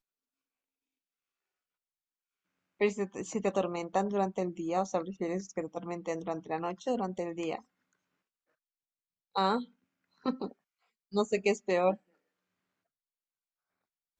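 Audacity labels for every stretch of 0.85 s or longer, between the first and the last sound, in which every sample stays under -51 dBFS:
7.610000	9.350000	silence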